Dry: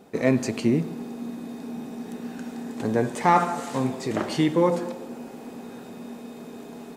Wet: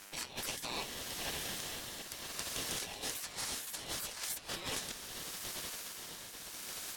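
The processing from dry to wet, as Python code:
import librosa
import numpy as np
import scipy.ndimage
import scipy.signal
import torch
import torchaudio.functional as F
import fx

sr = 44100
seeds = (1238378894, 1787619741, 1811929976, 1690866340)

p1 = fx.hum_notches(x, sr, base_hz=60, count=8)
p2 = fx.spec_gate(p1, sr, threshold_db=-30, keep='weak')
p3 = fx.dmg_buzz(p2, sr, base_hz=100.0, harmonics=15, level_db=-75.0, tilt_db=-1, odd_only=False)
p4 = p3 * (1.0 - 0.56 / 2.0 + 0.56 / 2.0 * np.cos(2.0 * np.pi * 0.72 * (np.arange(len(p3)) / sr)))
p5 = 10.0 ** (-37.0 / 20.0) * np.tanh(p4 / 10.0 ** (-37.0 / 20.0))
p6 = fx.over_compress(p5, sr, threshold_db=-53.0, ratio=-0.5)
p7 = p6 * np.sin(2.0 * np.pi * 1700.0 * np.arange(len(p6)) / sr)
p8 = p7 + fx.echo_single(p7, sr, ms=539, db=-16.0, dry=0)
y = F.gain(torch.from_numpy(p8), 16.5).numpy()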